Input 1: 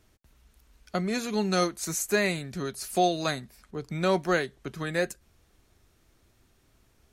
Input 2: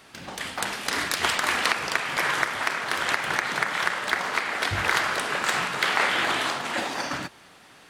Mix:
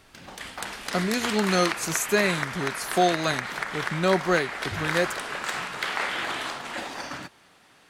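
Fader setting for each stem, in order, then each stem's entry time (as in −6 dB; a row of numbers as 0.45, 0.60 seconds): +2.5, −5.5 decibels; 0.00, 0.00 seconds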